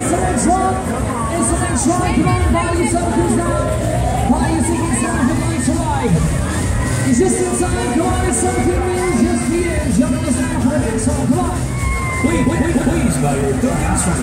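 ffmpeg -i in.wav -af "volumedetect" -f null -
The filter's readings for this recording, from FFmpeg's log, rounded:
mean_volume: -15.5 dB
max_volume: -1.9 dB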